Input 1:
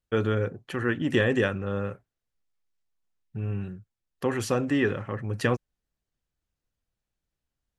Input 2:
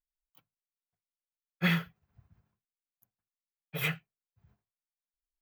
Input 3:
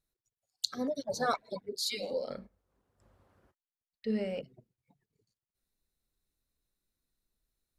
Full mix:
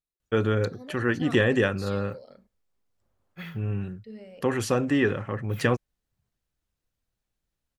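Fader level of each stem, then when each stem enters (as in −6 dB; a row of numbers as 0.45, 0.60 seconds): +1.5, −13.0, −11.0 decibels; 0.20, 1.75, 0.00 seconds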